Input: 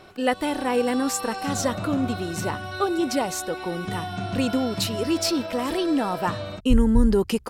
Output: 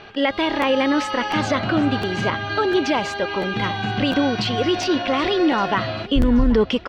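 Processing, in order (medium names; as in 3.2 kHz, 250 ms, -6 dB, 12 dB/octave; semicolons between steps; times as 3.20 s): peaking EQ 2.6 kHz +10 dB 1.7 oct; peak limiter -13 dBFS, peak gain reduction 9 dB; distance through air 230 m; feedback delay 849 ms, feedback 40%, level -18 dB; speed mistake 44.1 kHz file played as 48 kHz; crackling interface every 0.70 s, samples 512, repeat, from 0.61 s; trim +5 dB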